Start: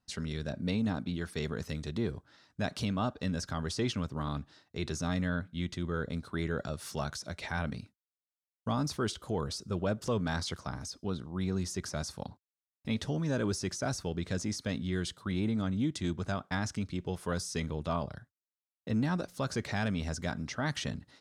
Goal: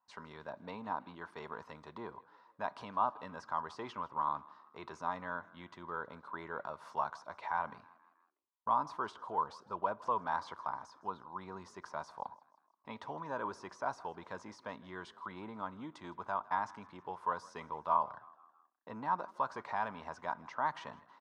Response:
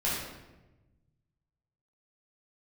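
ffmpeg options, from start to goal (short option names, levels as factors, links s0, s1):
-filter_complex "[0:a]bandpass=f=980:t=q:w=8.1:csg=0,asplit=5[s0][s1][s2][s3][s4];[s1]adelay=160,afreqshift=37,volume=0.0794[s5];[s2]adelay=320,afreqshift=74,volume=0.0407[s6];[s3]adelay=480,afreqshift=111,volume=0.0207[s7];[s4]adelay=640,afreqshift=148,volume=0.0106[s8];[s0][s5][s6][s7][s8]amix=inputs=5:normalize=0,asplit=2[s9][s10];[1:a]atrim=start_sample=2205,atrim=end_sample=6615[s11];[s10][s11]afir=irnorm=-1:irlink=0,volume=0.0266[s12];[s9][s12]amix=inputs=2:normalize=0,volume=4.73"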